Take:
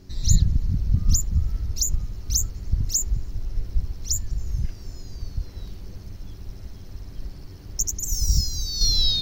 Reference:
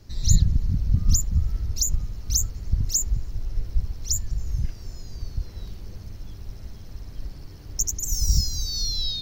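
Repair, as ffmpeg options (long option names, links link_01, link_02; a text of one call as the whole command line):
ffmpeg -i in.wav -af "bandreject=frequency=93.2:width_type=h:width=4,bandreject=frequency=186.4:width_type=h:width=4,bandreject=frequency=279.6:width_type=h:width=4,bandreject=frequency=372.8:width_type=h:width=4,asetnsamples=nb_out_samples=441:pad=0,asendcmd='8.81 volume volume -6.5dB',volume=0dB" out.wav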